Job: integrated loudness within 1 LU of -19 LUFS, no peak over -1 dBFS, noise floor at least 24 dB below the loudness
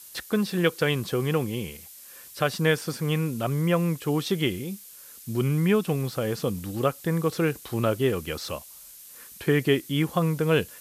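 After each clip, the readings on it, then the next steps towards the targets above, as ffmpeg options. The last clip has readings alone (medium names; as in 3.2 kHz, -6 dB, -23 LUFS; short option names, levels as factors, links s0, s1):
noise floor -47 dBFS; noise floor target -50 dBFS; loudness -26.0 LUFS; peak level -9.0 dBFS; loudness target -19.0 LUFS
-> -af "afftdn=nr=6:nf=-47"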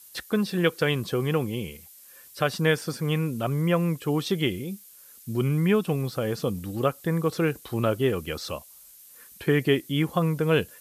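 noise floor -50 dBFS; loudness -26.0 LUFS; peak level -9.0 dBFS; loudness target -19.0 LUFS
-> -af "volume=2.24"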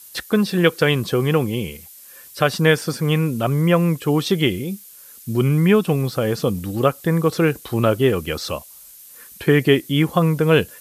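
loudness -19.0 LUFS; peak level -2.0 dBFS; noise floor -43 dBFS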